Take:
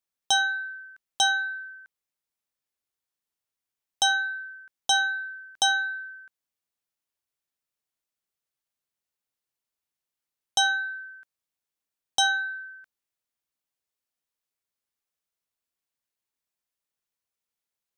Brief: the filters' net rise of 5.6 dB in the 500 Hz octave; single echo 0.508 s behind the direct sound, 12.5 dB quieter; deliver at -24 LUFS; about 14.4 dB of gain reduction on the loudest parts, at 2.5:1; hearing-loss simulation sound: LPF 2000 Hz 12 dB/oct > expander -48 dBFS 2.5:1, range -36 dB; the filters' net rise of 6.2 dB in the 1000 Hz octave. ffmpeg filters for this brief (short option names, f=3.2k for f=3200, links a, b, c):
-af "equalizer=f=500:t=o:g=4.5,equalizer=f=1k:t=o:g=7,acompressor=threshold=-38dB:ratio=2.5,lowpass=2k,aecho=1:1:508:0.237,agate=range=-36dB:threshold=-48dB:ratio=2.5,volume=14dB"